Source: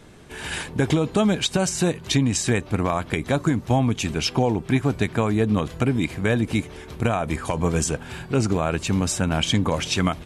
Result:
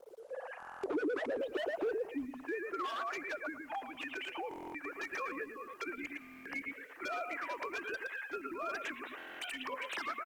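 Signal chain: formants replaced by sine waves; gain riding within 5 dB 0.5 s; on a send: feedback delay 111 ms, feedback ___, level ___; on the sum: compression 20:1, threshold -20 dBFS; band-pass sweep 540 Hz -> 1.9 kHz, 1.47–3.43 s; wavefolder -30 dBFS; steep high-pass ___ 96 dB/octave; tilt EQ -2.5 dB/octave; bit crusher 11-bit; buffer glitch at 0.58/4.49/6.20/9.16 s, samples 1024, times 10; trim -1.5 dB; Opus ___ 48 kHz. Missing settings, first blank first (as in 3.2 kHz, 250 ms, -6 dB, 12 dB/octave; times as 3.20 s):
22%, -7 dB, 260 Hz, 16 kbps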